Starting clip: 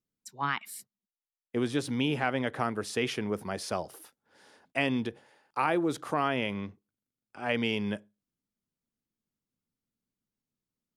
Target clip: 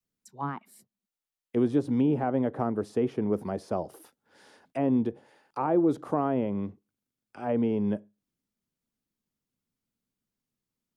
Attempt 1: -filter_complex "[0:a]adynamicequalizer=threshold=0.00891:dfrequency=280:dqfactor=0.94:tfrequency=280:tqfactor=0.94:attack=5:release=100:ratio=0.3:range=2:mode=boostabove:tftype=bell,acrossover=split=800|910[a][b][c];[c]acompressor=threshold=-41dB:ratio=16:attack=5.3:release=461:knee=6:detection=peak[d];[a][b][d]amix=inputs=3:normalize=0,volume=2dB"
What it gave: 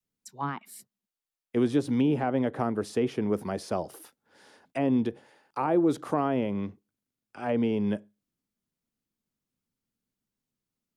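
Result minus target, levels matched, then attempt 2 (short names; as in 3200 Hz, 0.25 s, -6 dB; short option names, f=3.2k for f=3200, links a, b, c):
compressor: peak gain reduction -9.5 dB
-filter_complex "[0:a]adynamicequalizer=threshold=0.00891:dfrequency=280:dqfactor=0.94:tfrequency=280:tqfactor=0.94:attack=5:release=100:ratio=0.3:range=2:mode=boostabove:tftype=bell,acrossover=split=800|910[a][b][c];[c]acompressor=threshold=-51dB:ratio=16:attack=5.3:release=461:knee=6:detection=peak[d];[a][b][d]amix=inputs=3:normalize=0,volume=2dB"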